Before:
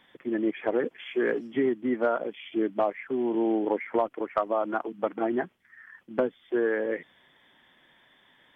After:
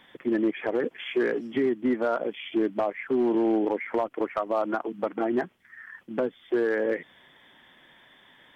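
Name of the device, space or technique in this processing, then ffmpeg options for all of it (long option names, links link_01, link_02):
limiter into clipper: -af "alimiter=limit=-21dB:level=0:latency=1:release=201,asoftclip=type=hard:threshold=-22.5dB,volume=5dB"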